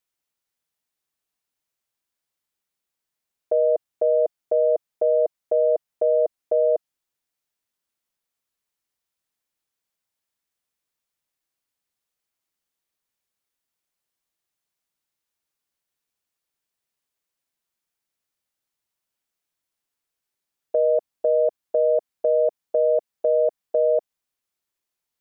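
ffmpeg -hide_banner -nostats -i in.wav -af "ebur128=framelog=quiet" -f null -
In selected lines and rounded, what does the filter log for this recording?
Integrated loudness:
  I:         -22.3 LUFS
  Threshold: -32.3 LUFS
Loudness range:
  LRA:         7.8 LU
  Threshold: -44.4 LUFS
  LRA low:   -29.9 LUFS
  LRA high:  -22.1 LUFS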